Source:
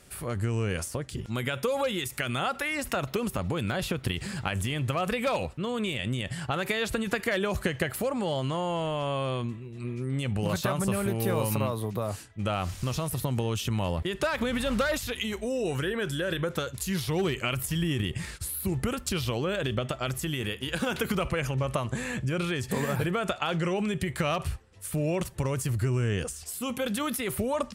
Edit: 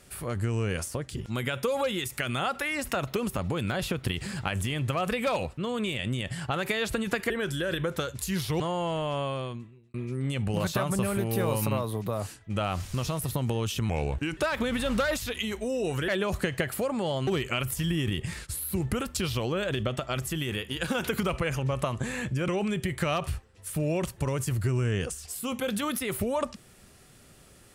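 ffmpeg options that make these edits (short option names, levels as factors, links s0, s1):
-filter_complex "[0:a]asplit=9[s0][s1][s2][s3][s4][s5][s6][s7][s8];[s0]atrim=end=7.302[s9];[s1]atrim=start=15.888:end=17.192[s10];[s2]atrim=start=8.488:end=9.83,asetpts=PTS-STARTPTS,afade=t=out:st=0.562:d=0.78[s11];[s3]atrim=start=9.83:end=13.784,asetpts=PTS-STARTPTS,afade=t=in:d=0.004:c=hsin[s12];[s4]atrim=start=13.78:end=14.18,asetpts=PTS-STARTPTS,asetrate=36603,aresample=44100,atrim=end_sample=21253,asetpts=PTS-STARTPTS[s13];[s5]atrim=start=14.176:end=15.892[s14];[s6]atrim=start=7.298:end=8.492[s15];[s7]atrim=start=17.188:end=22.402[s16];[s8]atrim=start=23.658[s17];[s9][s10]acrossfade=d=0.004:c1=hsin:c2=hsin[s18];[s11][s12]concat=n=2:v=0:a=1[s19];[s18][s19]acrossfade=d=0.004:c1=hsin:c2=hsin[s20];[s20][s13]acrossfade=d=0.004:c1=hsin:c2=hsin[s21];[s21][s14]acrossfade=d=0.004:c1=hsin:c2=hsin[s22];[s22][s15]acrossfade=d=0.004:c1=hsin:c2=hsin[s23];[s23][s16]acrossfade=d=0.004:c1=hsin:c2=hsin[s24];[s24][s17]acrossfade=d=0.004:c1=hsin:c2=hsin"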